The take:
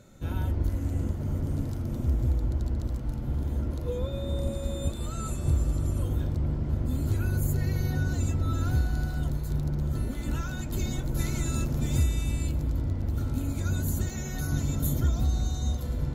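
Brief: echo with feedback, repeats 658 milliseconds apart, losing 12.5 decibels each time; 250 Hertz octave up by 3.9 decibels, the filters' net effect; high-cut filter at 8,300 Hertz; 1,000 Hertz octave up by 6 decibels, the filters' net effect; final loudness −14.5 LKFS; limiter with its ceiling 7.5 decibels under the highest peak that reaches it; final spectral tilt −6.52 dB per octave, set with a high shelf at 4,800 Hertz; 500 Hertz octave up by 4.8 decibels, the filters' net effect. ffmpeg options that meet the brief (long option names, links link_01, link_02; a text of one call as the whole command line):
ffmpeg -i in.wav -af "lowpass=8300,equalizer=frequency=250:width_type=o:gain=4,equalizer=frequency=500:width_type=o:gain=3,equalizer=frequency=1000:width_type=o:gain=7,highshelf=frequency=4800:gain=5,alimiter=limit=-20dB:level=0:latency=1,aecho=1:1:658|1316|1974:0.237|0.0569|0.0137,volume=15.5dB" out.wav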